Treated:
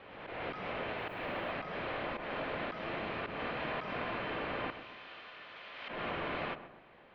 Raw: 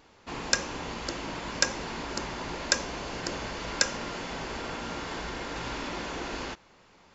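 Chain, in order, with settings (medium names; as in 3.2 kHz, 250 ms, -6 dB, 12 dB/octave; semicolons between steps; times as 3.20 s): 4.70–5.89 s: differentiator; slow attack 159 ms; mistuned SSB -360 Hz 560–3500 Hz; 0.97–1.51 s: added noise violet -80 dBFS; on a send: filtered feedback delay 129 ms, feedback 46%, low-pass 1.5 kHz, level -11 dB; on the sum: swell ahead of each attack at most 37 dB/s; trim +1 dB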